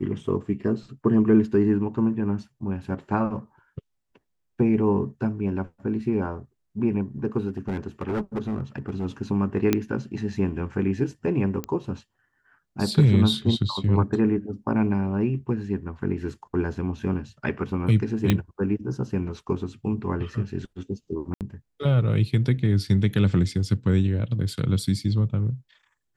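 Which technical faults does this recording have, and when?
7.48–9.06 clipped -23 dBFS
9.73 pop -7 dBFS
11.64 pop -15 dBFS
18.3 pop -7 dBFS
21.34–21.41 gap 68 ms

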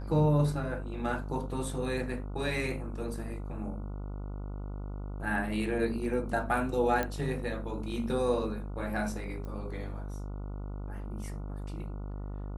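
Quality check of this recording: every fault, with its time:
buzz 50 Hz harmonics 29 -38 dBFS
7.03 pop -17 dBFS
9.45 pop -31 dBFS

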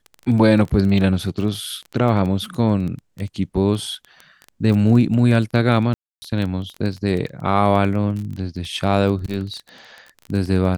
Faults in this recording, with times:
crackle 16/s -25 dBFS
5.94–6.22 gap 0.28 s

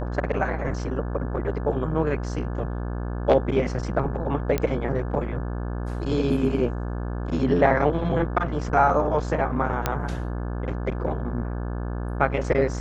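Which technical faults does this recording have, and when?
buzz 60 Hz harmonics 29 -29 dBFS
4.58 pop -11 dBFS
9.86 pop -8 dBFS

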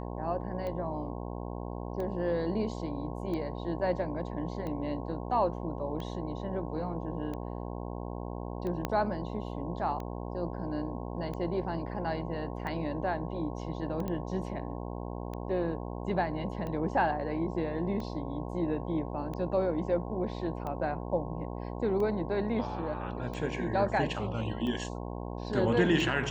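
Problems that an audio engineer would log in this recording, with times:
buzz 60 Hz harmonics 18 -38 dBFS
tick 45 rpm -26 dBFS
8.85 pop -16 dBFS
14.08 pop -23 dBFS

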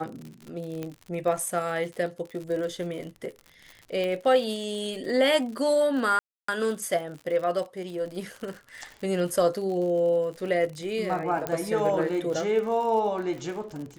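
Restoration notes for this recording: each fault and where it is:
crackle 71/s -35 dBFS
0.83 pop -20 dBFS
4.04 pop -20 dBFS
6.19–6.48 gap 0.294 s
11.47 pop -13 dBFS

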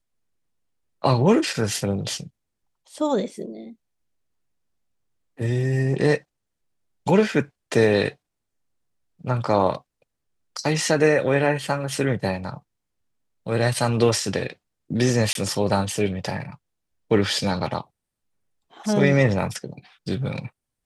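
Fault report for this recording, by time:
15.33–15.35 gap 22 ms

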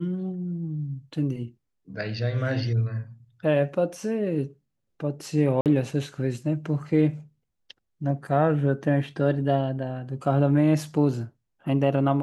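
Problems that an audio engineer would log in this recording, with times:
5.61–5.66 gap 48 ms

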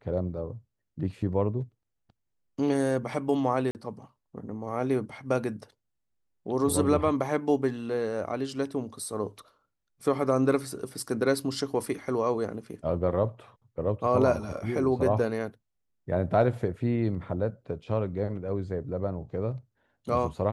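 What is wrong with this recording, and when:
3.71–3.75 gap 39 ms

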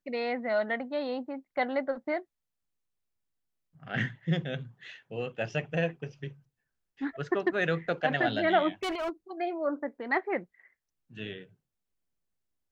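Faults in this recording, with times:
8.83–9.1 clipped -29 dBFS

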